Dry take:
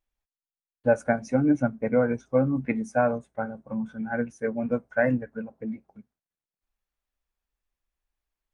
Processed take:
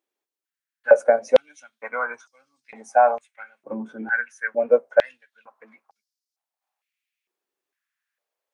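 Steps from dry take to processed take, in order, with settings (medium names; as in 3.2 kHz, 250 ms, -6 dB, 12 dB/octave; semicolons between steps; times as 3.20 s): loudness maximiser +11 dB; step-sequenced high-pass 2.2 Hz 360–5000 Hz; trim -8.5 dB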